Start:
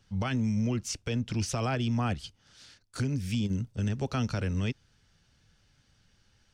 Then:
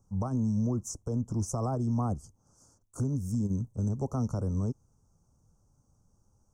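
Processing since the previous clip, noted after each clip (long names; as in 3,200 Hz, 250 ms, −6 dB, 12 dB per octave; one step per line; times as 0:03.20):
elliptic band-stop filter 1,100–6,400 Hz, stop band 40 dB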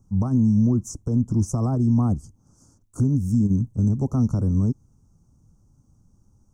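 low shelf with overshoot 380 Hz +6.5 dB, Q 1.5
level +2.5 dB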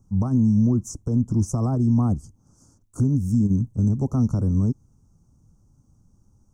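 no processing that can be heard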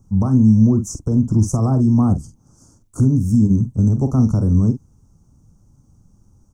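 double-tracking delay 46 ms −10 dB
level +5.5 dB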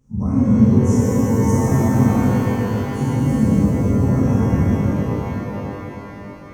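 random phases in long frames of 50 ms
reverb with rising layers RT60 3.9 s, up +12 semitones, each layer −8 dB, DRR −9.5 dB
level −10 dB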